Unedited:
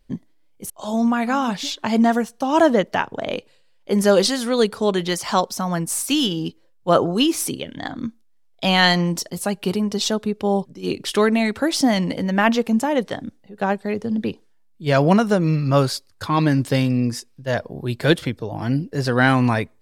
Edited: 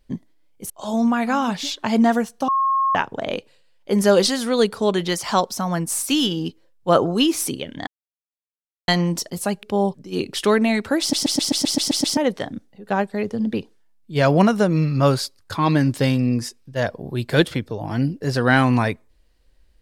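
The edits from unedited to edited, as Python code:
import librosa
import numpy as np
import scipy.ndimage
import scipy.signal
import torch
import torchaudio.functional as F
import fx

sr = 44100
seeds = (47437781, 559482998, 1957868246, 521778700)

y = fx.edit(x, sr, fx.bleep(start_s=2.48, length_s=0.47, hz=1080.0, db=-16.0),
    fx.silence(start_s=7.87, length_s=1.01),
    fx.cut(start_s=9.63, length_s=0.71),
    fx.stutter_over(start_s=11.71, slice_s=0.13, count=9), tone=tone)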